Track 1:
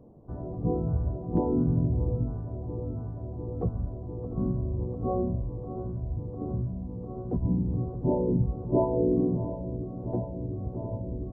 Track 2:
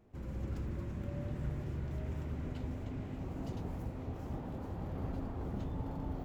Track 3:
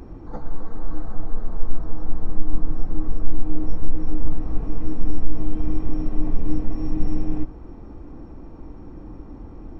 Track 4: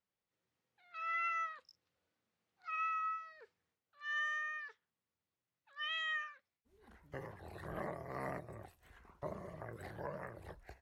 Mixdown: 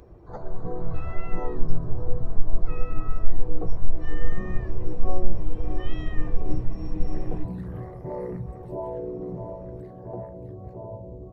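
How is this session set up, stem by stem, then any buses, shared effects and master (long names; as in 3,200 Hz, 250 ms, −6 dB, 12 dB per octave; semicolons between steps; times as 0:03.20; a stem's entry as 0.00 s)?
+2.0 dB, 0.00 s, no send, low-shelf EQ 210 Hz −10 dB; brickwall limiter −25 dBFS, peak gain reduction 9.5 dB
−16.0 dB, 1.70 s, no send, no processing
−0.5 dB, 0.00 s, no send, spectral dynamics exaggerated over time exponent 1.5
0:09.06 −3 dB → 0:09.48 −12.5 dB, 0.00 s, no send, brickwall limiter −36 dBFS, peak gain reduction 6.5 dB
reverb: not used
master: parametric band 260 Hz −12.5 dB 0.45 octaves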